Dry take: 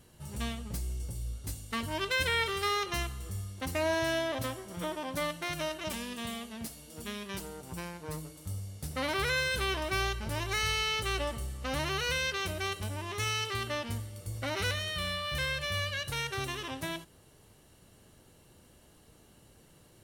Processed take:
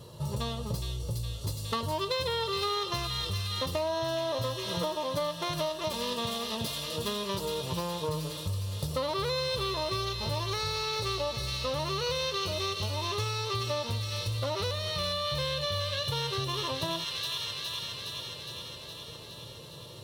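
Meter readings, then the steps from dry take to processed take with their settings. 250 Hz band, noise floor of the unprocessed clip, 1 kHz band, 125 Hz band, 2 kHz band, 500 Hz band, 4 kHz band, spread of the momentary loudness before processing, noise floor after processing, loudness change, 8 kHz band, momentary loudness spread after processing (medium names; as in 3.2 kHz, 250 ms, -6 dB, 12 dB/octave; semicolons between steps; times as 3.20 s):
+0.5 dB, -60 dBFS, +2.5 dB, +4.0 dB, -6.5 dB, +4.0 dB, +4.0 dB, 12 LU, -45 dBFS, +1.5 dB, +0.5 dB, 6 LU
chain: graphic EQ 125/250/500/1000/2000/4000/8000 Hz +11/-6/+9/+8/-10/+11/-4 dB; on a send: feedback echo behind a high-pass 414 ms, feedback 71%, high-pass 2.2 kHz, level -4.5 dB; on the sum: compression, threshold -35 dBFS, peak gain reduction 15 dB; comb of notches 760 Hz; trim +7 dB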